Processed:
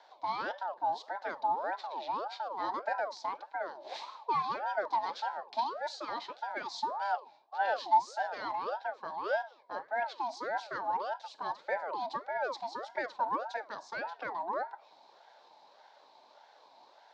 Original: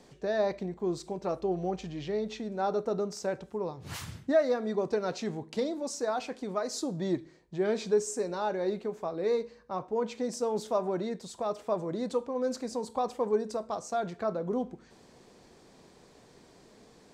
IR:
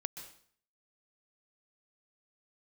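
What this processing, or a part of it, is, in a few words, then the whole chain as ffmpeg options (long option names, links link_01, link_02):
voice changer toy: -af "aeval=exprs='val(0)*sin(2*PI*820*n/s+820*0.45/1.7*sin(2*PI*1.7*n/s))':channel_layout=same,highpass=570,equalizer=frequency=590:width_type=q:width=4:gain=6,equalizer=frequency=880:width_type=q:width=4:gain=8,equalizer=frequency=1300:width_type=q:width=4:gain=-10,equalizer=frequency=1900:width_type=q:width=4:gain=-4,equalizer=frequency=2800:width_type=q:width=4:gain=-5,equalizer=frequency=4000:width_type=q:width=4:gain=8,lowpass=frequency=4800:width=0.5412,lowpass=frequency=4800:width=1.3066"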